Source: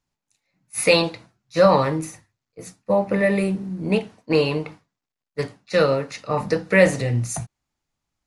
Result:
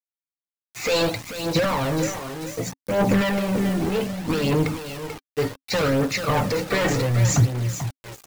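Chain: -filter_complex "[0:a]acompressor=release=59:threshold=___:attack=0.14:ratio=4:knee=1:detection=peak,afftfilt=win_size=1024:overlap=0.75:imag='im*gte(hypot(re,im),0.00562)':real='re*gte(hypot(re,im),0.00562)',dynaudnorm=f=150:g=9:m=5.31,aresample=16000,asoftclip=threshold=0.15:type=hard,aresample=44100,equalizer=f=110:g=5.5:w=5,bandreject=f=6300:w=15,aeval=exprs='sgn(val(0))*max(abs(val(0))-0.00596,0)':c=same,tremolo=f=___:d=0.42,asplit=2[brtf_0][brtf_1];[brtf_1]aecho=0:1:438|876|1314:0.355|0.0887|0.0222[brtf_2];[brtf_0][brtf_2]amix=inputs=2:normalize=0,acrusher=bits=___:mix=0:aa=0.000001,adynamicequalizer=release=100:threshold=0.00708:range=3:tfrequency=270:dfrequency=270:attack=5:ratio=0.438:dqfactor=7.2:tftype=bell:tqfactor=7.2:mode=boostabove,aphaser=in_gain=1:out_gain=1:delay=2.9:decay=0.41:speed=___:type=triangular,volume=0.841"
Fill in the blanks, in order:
0.0794, 1.9, 5, 0.66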